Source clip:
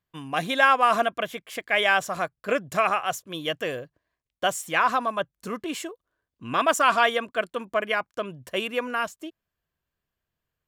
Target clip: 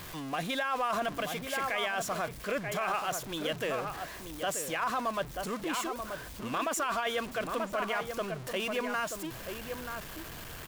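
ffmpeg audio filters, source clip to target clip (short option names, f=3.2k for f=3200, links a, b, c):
-filter_complex "[0:a]aeval=exprs='val(0)+0.5*0.0316*sgn(val(0))':c=same,equalizer=f=85:t=o:w=2.4:g=-3,asplit=2[a][b];[b]adelay=932.9,volume=-7dB,highshelf=f=4k:g=-21[c];[a][c]amix=inputs=2:normalize=0,alimiter=limit=-16.5dB:level=0:latency=1:release=13,volume=-6.5dB"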